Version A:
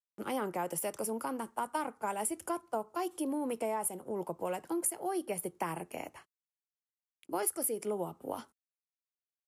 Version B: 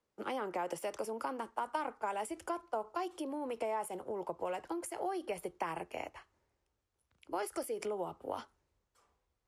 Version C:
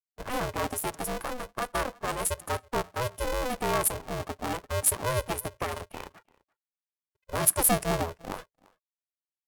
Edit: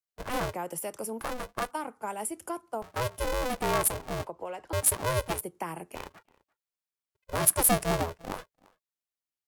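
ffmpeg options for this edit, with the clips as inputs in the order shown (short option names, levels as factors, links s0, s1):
-filter_complex "[0:a]asplit=3[s0][s1][s2];[2:a]asplit=5[s3][s4][s5][s6][s7];[s3]atrim=end=0.542[s8];[s0]atrim=start=0.538:end=1.212[s9];[s4]atrim=start=1.208:end=1.712[s10];[s1]atrim=start=1.708:end=2.822[s11];[s5]atrim=start=2.818:end=4.272[s12];[1:a]atrim=start=4.268:end=4.732[s13];[s6]atrim=start=4.728:end=5.412[s14];[s2]atrim=start=5.408:end=5.952[s15];[s7]atrim=start=5.948[s16];[s8][s9]acrossfade=d=0.004:c1=hsin:c2=hsin[s17];[s17][s10]acrossfade=d=0.004:c1=hsin:c2=hsin[s18];[s18][s11]acrossfade=d=0.004:c1=hsin:c2=hsin[s19];[s19][s12]acrossfade=d=0.004:c1=hsin:c2=hsin[s20];[s20][s13]acrossfade=d=0.004:c1=hsin:c2=hsin[s21];[s21][s14]acrossfade=d=0.004:c1=hsin:c2=hsin[s22];[s22][s15]acrossfade=d=0.004:c1=hsin:c2=hsin[s23];[s23][s16]acrossfade=d=0.004:c1=hsin:c2=hsin"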